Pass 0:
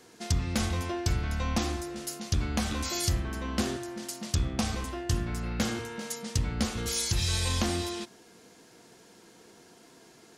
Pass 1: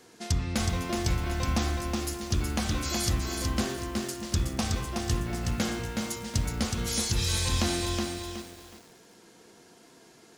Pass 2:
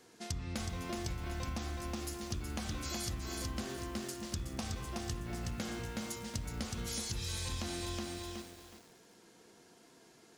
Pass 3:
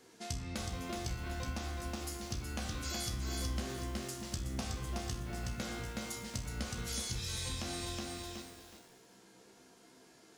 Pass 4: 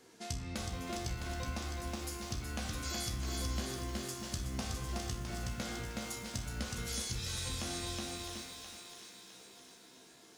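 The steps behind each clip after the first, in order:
bit-crushed delay 370 ms, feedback 35%, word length 8-bit, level -4 dB
compression, threshold -29 dBFS, peak gain reduction 7.5 dB; trim -6 dB
feedback comb 64 Hz, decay 0.4 s, harmonics all, mix 80%; trim +7.5 dB
thinning echo 659 ms, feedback 51%, high-pass 880 Hz, level -7 dB

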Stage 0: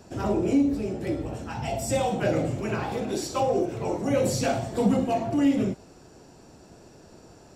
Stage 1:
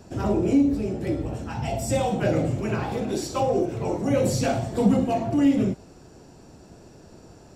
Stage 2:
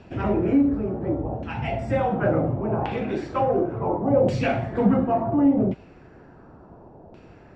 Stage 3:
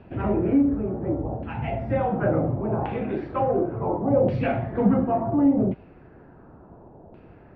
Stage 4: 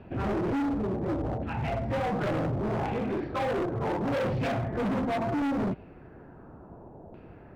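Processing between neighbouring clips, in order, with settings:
bass shelf 270 Hz +5 dB
LFO low-pass saw down 0.7 Hz 730–2800 Hz
distance through air 380 m
overload inside the chain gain 26.5 dB

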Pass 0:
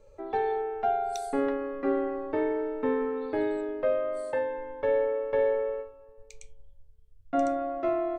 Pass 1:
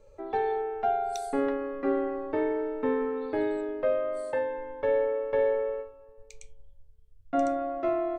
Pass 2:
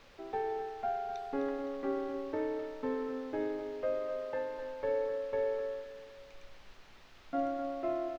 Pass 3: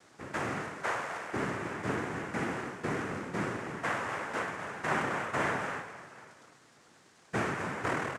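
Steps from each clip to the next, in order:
no audible change
added noise white -45 dBFS; distance through air 240 m; on a send: feedback delay 256 ms, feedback 40%, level -10 dB; on the sum: trim -6.5 dB
in parallel at -4 dB: sample-rate reducer 3.2 kHz; on the sum: noise-vocoded speech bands 3; trim -2.5 dB

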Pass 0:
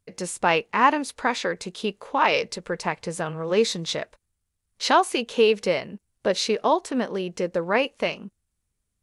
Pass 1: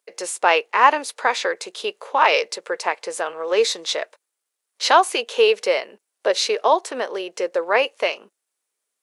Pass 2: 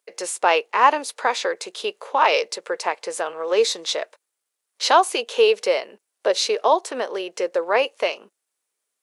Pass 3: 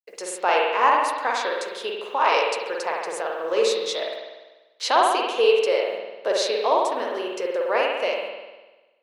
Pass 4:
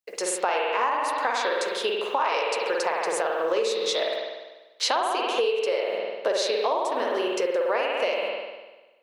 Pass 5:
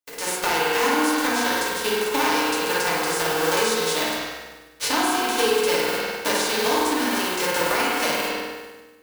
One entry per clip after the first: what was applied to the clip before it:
high-pass 410 Hz 24 dB/octave; trim +4.5 dB
dynamic bell 1.9 kHz, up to -4 dB, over -31 dBFS, Q 1.2
word length cut 10-bit, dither none; spring tank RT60 1.2 s, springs 49 ms, chirp 25 ms, DRR -1.5 dB; trim -5 dB
compression 12:1, threshold -26 dBFS, peak gain reduction 14 dB; trim +5 dB
formants flattened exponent 0.3; FDN reverb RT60 1.2 s, low-frequency decay 1.4×, high-frequency decay 0.3×, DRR -4 dB; trim -2.5 dB

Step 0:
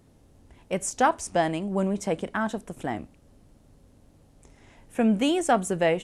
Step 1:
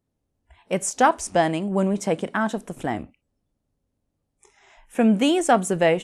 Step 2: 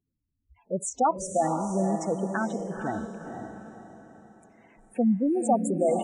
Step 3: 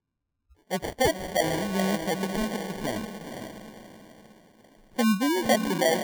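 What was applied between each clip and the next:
spectral noise reduction 24 dB; trim +4 dB
spectral gate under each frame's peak -10 dB strong; echo that smears into a reverb 488 ms, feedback 41%, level -6 dB; trim -4.5 dB
sample-and-hold 34×

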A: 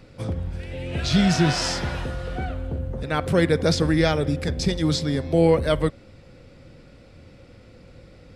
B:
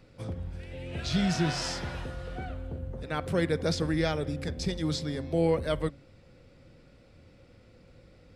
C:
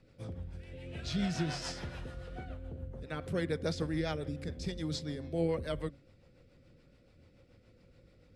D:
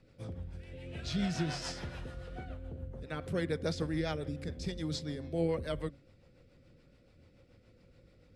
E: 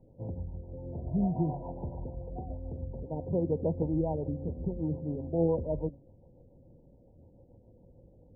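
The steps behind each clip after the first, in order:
de-hum 70.14 Hz, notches 4; trim -8 dB
rotary cabinet horn 7 Hz; trim -4.5 dB
no audible change
brick-wall FIR low-pass 1 kHz; trim +4.5 dB

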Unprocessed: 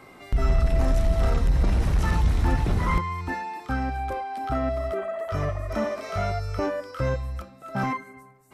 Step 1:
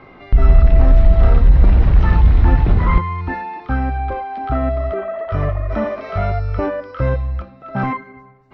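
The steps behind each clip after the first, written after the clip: Bessel low-pass 2.7 kHz, order 6; bass shelf 65 Hz +8.5 dB; trim +6 dB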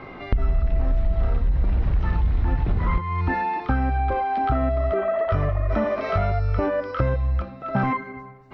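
compression 6:1, threshold -22 dBFS, peak gain reduction 16 dB; trim +3.5 dB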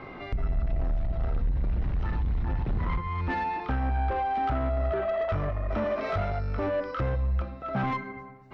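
saturation -19.5 dBFS, distortion -14 dB; on a send at -16.5 dB: reverberation RT60 0.95 s, pre-delay 29 ms; on the sum: trim -3 dB

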